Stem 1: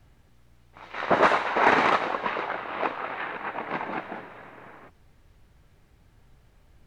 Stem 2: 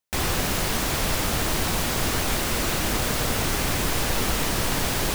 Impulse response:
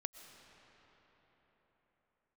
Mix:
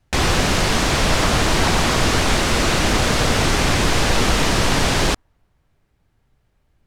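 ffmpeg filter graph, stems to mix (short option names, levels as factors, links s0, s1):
-filter_complex "[0:a]volume=0.224,asplit=2[s0][s1];[s1]volume=0.251[s2];[1:a]lowpass=6900,volume=1.41[s3];[2:a]atrim=start_sample=2205[s4];[s2][s4]afir=irnorm=-1:irlink=0[s5];[s0][s3][s5]amix=inputs=3:normalize=0,acontrast=27"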